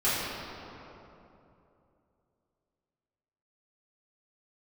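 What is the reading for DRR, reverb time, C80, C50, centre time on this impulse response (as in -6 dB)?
-13.0 dB, 3.0 s, -1.0 dB, -3.0 dB, 0.174 s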